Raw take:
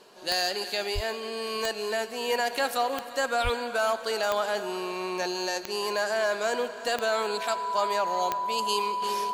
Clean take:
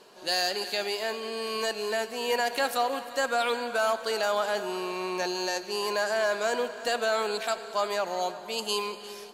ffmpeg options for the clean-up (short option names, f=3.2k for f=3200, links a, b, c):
-filter_complex "[0:a]adeclick=t=4,bandreject=f=990:w=30,asplit=3[a][b][c];[a]afade=t=out:st=0.94:d=0.02[d];[b]highpass=f=140:w=0.5412,highpass=f=140:w=1.3066,afade=t=in:st=0.94:d=0.02,afade=t=out:st=1.06:d=0.02[e];[c]afade=t=in:st=1.06:d=0.02[f];[d][e][f]amix=inputs=3:normalize=0,asplit=3[g][h][i];[g]afade=t=out:st=3.43:d=0.02[j];[h]highpass=f=140:w=0.5412,highpass=f=140:w=1.3066,afade=t=in:st=3.43:d=0.02,afade=t=out:st=3.55:d=0.02[k];[i]afade=t=in:st=3.55:d=0.02[l];[j][k][l]amix=inputs=3:normalize=0,asetnsamples=n=441:p=0,asendcmd='9.02 volume volume -7.5dB',volume=0dB"